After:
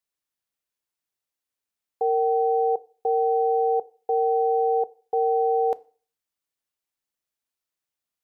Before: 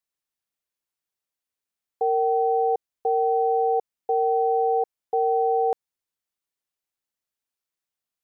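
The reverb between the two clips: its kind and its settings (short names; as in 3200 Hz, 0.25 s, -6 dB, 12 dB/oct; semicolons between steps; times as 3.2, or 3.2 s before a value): FDN reverb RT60 0.4 s, low-frequency decay 0.95×, high-frequency decay 1×, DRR 16 dB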